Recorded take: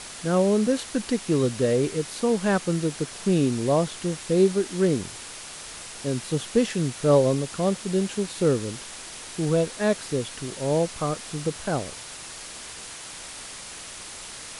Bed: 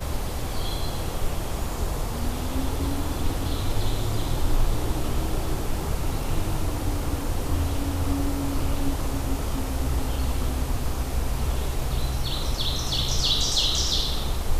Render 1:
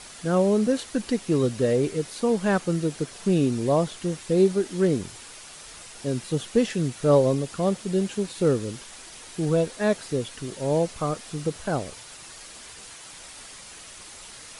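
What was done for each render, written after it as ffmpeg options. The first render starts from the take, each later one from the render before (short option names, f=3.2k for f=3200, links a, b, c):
-af "afftdn=nr=6:nf=-40"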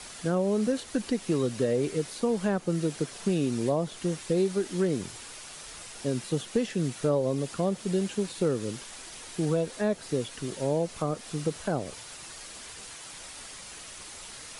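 -filter_complex "[0:a]acrossover=split=110|770[a][b][c];[a]acompressor=threshold=-50dB:ratio=4[d];[b]acompressor=threshold=-24dB:ratio=4[e];[c]acompressor=threshold=-38dB:ratio=4[f];[d][e][f]amix=inputs=3:normalize=0"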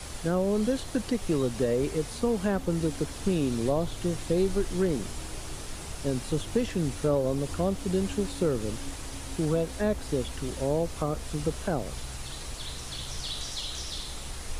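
-filter_complex "[1:a]volume=-13dB[a];[0:a][a]amix=inputs=2:normalize=0"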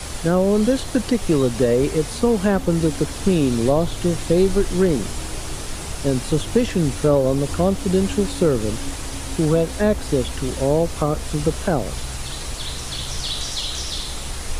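-af "volume=9dB"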